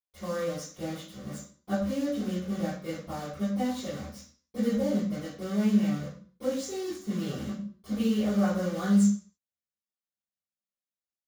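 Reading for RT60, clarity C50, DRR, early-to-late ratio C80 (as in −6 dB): 0.45 s, 1.0 dB, −20.5 dB, 7.0 dB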